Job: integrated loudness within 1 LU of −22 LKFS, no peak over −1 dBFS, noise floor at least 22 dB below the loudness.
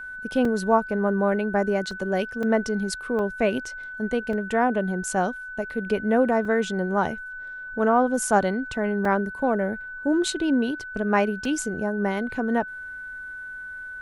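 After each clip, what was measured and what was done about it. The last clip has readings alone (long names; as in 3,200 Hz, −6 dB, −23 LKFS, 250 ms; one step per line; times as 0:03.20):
number of dropouts 8; longest dropout 2.8 ms; interfering tone 1,500 Hz; level of the tone −34 dBFS; integrated loudness −24.5 LKFS; sample peak −7.5 dBFS; target loudness −22.0 LKFS
→ repair the gap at 0:00.45/0:01.91/0:02.43/0:03.19/0:04.33/0:06.45/0:09.05/0:11.45, 2.8 ms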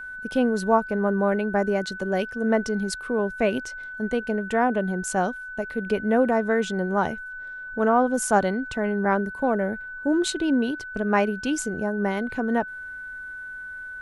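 number of dropouts 0; interfering tone 1,500 Hz; level of the tone −34 dBFS
→ notch filter 1,500 Hz, Q 30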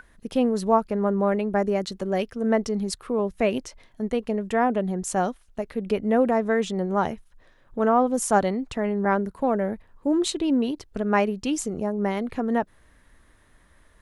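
interfering tone none found; integrated loudness −25.0 LKFS; sample peak −7.5 dBFS; target loudness −22.0 LKFS
→ level +3 dB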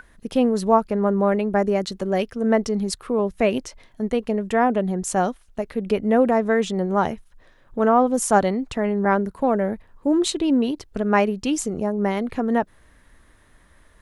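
integrated loudness −22.0 LKFS; sample peak −4.5 dBFS; background noise floor −55 dBFS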